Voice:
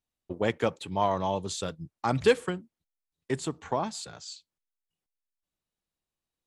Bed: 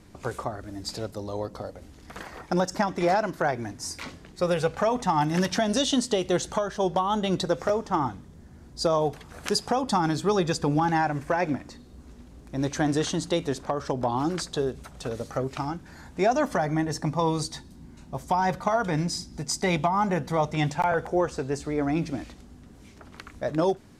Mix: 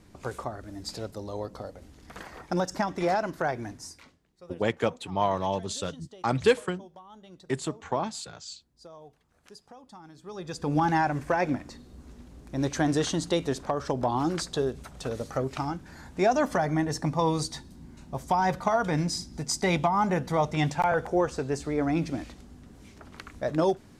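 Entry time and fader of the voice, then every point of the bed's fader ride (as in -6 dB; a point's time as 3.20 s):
4.20 s, +0.5 dB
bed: 3.74 s -3 dB
4.23 s -24.5 dB
10.13 s -24.5 dB
10.78 s -0.5 dB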